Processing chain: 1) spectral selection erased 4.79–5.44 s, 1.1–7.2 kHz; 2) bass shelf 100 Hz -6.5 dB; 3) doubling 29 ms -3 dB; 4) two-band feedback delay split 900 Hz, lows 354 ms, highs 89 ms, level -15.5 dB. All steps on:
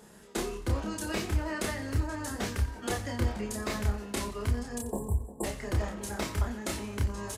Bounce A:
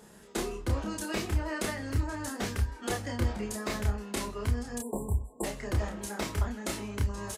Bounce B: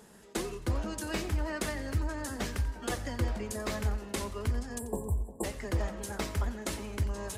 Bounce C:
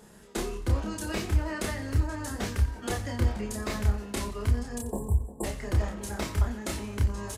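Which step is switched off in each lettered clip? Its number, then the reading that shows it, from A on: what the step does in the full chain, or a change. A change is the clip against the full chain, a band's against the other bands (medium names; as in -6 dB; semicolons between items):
4, echo-to-direct -14.0 dB to none; 3, loudness change -1.5 LU; 2, 125 Hz band +4.0 dB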